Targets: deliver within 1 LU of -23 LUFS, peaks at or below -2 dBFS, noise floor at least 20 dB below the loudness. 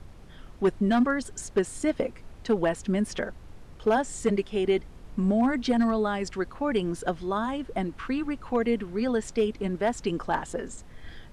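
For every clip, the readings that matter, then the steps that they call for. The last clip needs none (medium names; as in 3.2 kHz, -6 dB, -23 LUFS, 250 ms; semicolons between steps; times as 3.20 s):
clipped samples 0.4%; clipping level -16.0 dBFS; noise floor -47 dBFS; noise floor target -48 dBFS; loudness -28.0 LUFS; peak level -16.0 dBFS; loudness target -23.0 LUFS
-> clip repair -16 dBFS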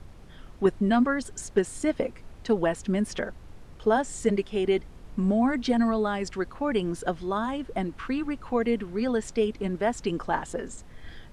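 clipped samples 0.0%; noise floor -47 dBFS; noise floor target -48 dBFS
-> noise print and reduce 6 dB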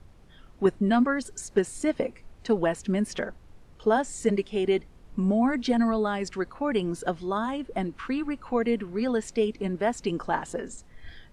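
noise floor -52 dBFS; loudness -27.5 LUFS; peak level -9.0 dBFS; loudness target -23.0 LUFS
-> trim +4.5 dB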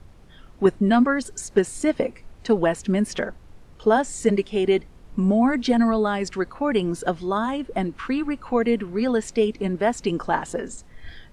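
loudness -23.0 LUFS; peak level -4.5 dBFS; noise floor -48 dBFS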